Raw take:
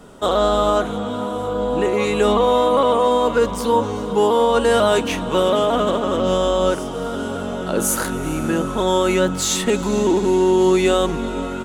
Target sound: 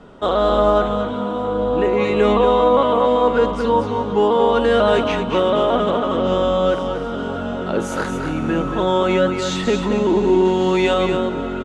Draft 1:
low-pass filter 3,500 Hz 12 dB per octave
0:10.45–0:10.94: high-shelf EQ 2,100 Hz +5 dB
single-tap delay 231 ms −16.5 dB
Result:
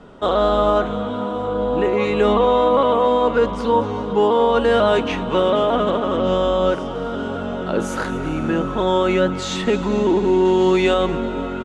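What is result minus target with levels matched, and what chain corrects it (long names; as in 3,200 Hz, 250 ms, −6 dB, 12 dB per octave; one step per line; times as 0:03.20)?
echo-to-direct −10 dB
low-pass filter 3,500 Hz 12 dB per octave
0:10.45–0:10.94: high-shelf EQ 2,100 Hz +5 dB
single-tap delay 231 ms −6.5 dB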